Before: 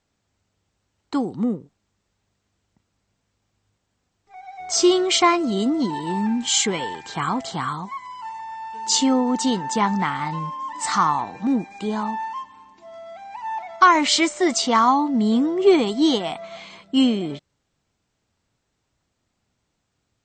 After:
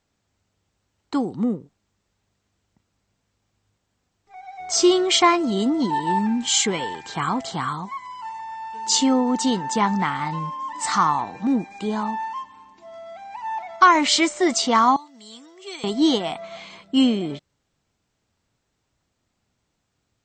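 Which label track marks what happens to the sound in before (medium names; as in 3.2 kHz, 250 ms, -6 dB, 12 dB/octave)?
5.070000	6.190000	small resonant body resonances 900/1800/3300 Hz, height 8 dB
14.960000	15.840000	differentiator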